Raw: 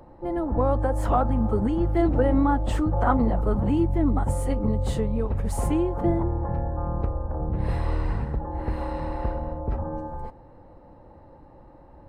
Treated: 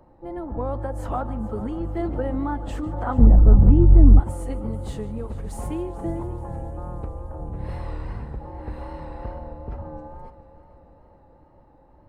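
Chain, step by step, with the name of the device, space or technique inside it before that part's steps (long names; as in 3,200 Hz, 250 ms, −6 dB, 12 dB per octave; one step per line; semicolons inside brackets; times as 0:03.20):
multi-head tape echo (echo machine with several playback heads 146 ms, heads first and third, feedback 70%, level −18 dB; tape wow and flutter)
0:03.18–0:04.20: spectral tilt −4.5 dB per octave
level −5.5 dB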